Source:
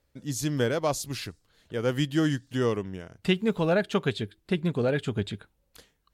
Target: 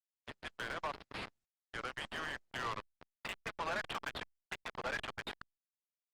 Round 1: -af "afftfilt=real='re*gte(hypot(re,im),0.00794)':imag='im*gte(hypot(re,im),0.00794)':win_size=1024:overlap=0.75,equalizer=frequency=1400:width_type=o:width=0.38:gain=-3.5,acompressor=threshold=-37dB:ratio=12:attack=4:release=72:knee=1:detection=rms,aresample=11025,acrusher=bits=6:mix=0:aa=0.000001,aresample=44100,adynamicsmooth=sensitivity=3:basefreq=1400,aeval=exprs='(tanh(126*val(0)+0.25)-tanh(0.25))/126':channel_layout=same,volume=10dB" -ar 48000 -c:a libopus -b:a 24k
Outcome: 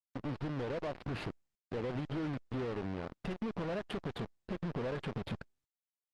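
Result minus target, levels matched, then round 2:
1,000 Hz band −6.0 dB
-af "afftfilt=real='re*gte(hypot(re,im),0.00794)':imag='im*gte(hypot(re,im),0.00794)':win_size=1024:overlap=0.75,highpass=frequency=1000:width=0.5412,highpass=frequency=1000:width=1.3066,equalizer=frequency=1400:width_type=o:width=0.38:gain=-3.5,acompressor=threshold=-37dB:ratio=12:attack=4:release=72:knee=1:detection=rms,aresample=11025,acrusher=bits=6:mix=0:aa=0.000001,aresample=44100,adynamicsmooth=sensitivity=3:basefreq=1400,aeval=exprs='(tanh(126*val(0)+0.25)-tanh(0.25))/126':channel_layout=same,volume=10dB" -ar 48000 -c:a libopus -b:a 24k

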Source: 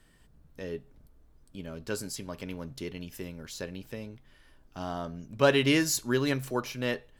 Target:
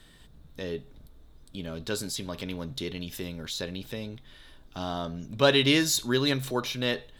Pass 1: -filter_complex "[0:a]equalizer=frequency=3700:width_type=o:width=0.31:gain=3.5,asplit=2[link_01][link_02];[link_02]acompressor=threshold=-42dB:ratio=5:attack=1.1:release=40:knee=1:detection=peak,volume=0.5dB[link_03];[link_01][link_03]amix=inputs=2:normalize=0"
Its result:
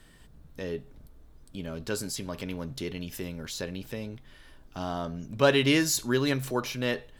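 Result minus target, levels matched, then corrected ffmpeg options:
4,000 Hz band −3.5 dB
-filter_complex "[0:a]equalizer=frequency=3700:width_type=o:width=0.31:gain=13.5,asplit=2[link_01][link_02];[link_02]acompressor=threshold=-42dB:ratio=5:attack=1.1:release=40:knee=1:detection=peak,volume=0.5dB[link_03];[link_01][link_03]amix=inputs=2:normalize=0"

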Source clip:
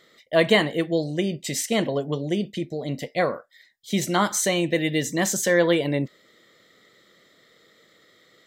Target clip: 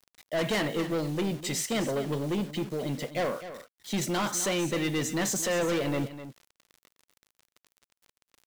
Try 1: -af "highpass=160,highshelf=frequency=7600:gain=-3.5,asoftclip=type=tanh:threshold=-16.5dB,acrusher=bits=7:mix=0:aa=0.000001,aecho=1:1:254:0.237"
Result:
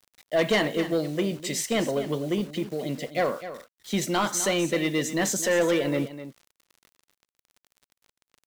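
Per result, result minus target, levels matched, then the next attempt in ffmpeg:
soft clipping: distortion −6 dB; 125 Hz band −3.5 dB
-af "highpass=160,highshelf=frequency=7600:gain=-3.5,asoftclip=type=tanh:threshold=-25dB,acrusher=bits=7:mix=0:aa=0.000001,aecho=1:1:254:0.237"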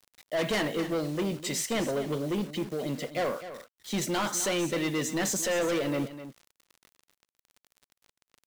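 125 Hz band −2.5 dB
-af "highpass=60,highshelf=frequency=7600:gain=-3.5,asoftclip=type=tanh:threshold=-25dB,acrusher=bits=7:mix=0:aa=0.000001,aecho=1:1:254:0.237"

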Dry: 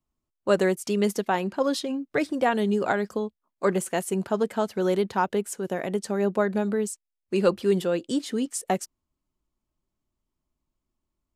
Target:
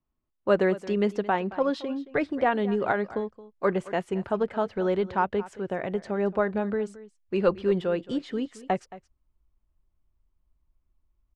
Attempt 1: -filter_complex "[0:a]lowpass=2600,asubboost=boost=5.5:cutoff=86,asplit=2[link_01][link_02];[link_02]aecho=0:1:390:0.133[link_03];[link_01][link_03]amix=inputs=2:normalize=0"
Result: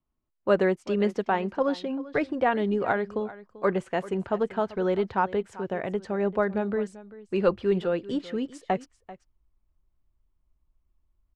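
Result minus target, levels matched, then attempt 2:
echo 168 ms late
-filter_complex "[0:a]lowpass=2600,asubboost=boost=5.5:cutoff=86,asplit=2[link_01][link_02];[link_02]aecho=0:1:222:0.133[link_03];[link_01][link_03]amix=inputs=2:normalize=0"

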